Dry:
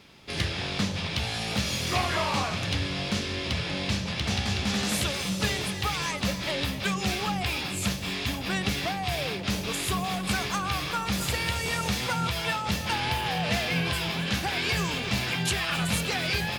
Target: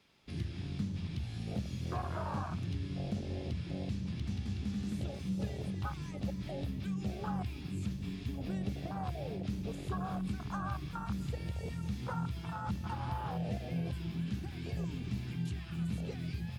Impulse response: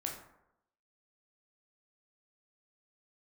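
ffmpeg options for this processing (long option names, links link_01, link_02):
-filter_complex "[0:a]acrossover=split=170|7000[link_01][link_02][link_03];[link_01]acompressor=threshold=-37dB:ratio=4[link_04];[link_02]acompressor=threshold=-38dB:ratio=4[link_05];[link_03]acompressor=threshold=-53dB:ratio=4[link_06];[link_04][link_05][link_06]amix=inputs=3:normalize=0,asplit=2[link_07][link_08];[1:a]atrim=start_sample=2205,lowshelf=frequency=410:gain=-10[link_09];[link_08][link_09]afir=irnorm=-1:irlink=0,volume=-11dB[link_10];[link_07][link_10]amix=inputs=2:normalize=0,afwtdn=0.0224"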